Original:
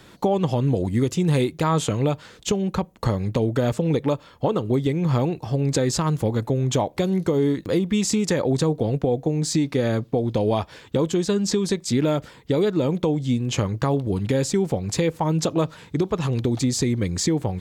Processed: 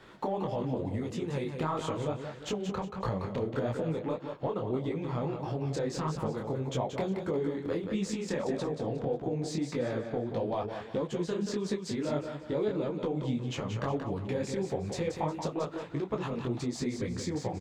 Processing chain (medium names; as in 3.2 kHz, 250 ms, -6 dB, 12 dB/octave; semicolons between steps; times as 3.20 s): compression, threshold -24 dBFS, peak gain reduction 8 dB; overdrive pedal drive 9 dB, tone 1.2 kHz, clips at -13.5 dBFS; on a send: feedback delay 180 ms, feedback 34%, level -7 dB; on the sum: detune thickener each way 56 cents